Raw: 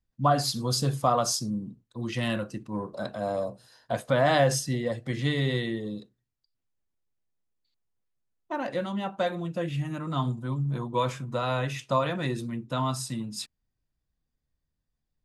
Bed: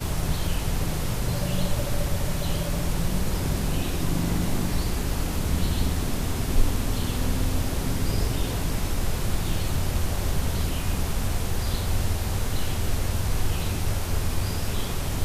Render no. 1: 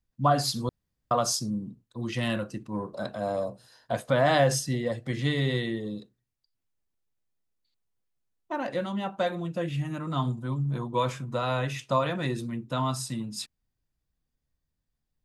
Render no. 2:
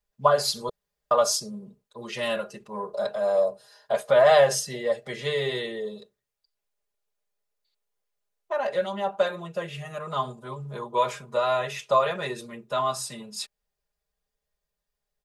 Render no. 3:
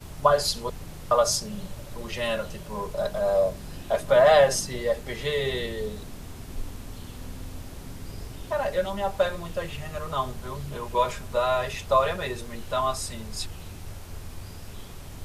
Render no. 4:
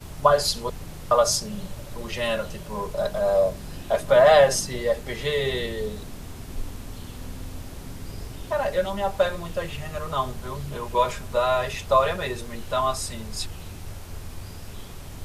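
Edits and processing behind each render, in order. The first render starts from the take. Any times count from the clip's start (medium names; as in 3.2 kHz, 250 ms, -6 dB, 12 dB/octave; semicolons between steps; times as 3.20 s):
0.69–1.11 s: room tone
resonant low shelf 370 Hz -8.5 dB, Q 3; comb 4.9 ms, depth 88%
add bed -13.5 dB
trim +2 dB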